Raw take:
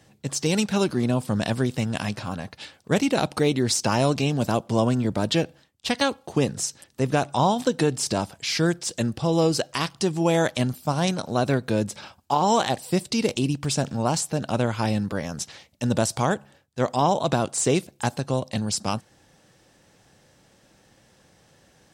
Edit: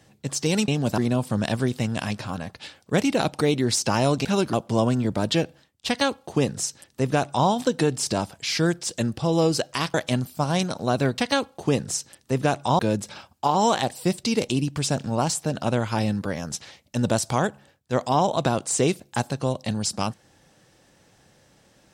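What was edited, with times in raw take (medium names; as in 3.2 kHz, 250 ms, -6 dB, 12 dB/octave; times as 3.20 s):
0.68–0.96 s: swap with 4.23–4.53 s
5.87–7.48 s: copy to 11.66 s
9.94–10.42 s: delete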